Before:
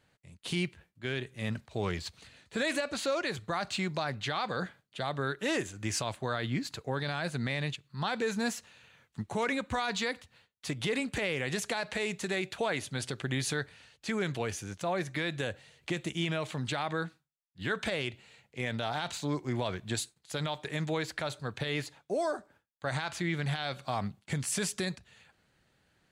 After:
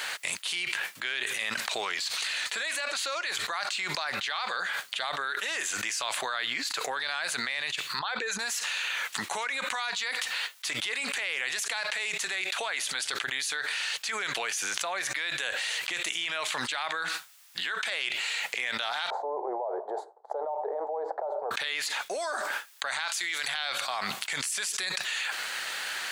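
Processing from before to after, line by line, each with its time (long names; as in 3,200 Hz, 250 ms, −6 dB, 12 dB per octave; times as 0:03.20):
0:07.99–0:08.39: spectral envelope exaggerated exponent 1.5
0:19.10–0:21.51: elliptic band-pass filter 400–840 Hz, stop band 60 dB
0:23.08–0:23.48: bass and treble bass −9 dB, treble +12 dB
whole clip: de-essing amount 50%; high-pass filter 1,200 Hz 12 dB per octave; envelope flattener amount 100%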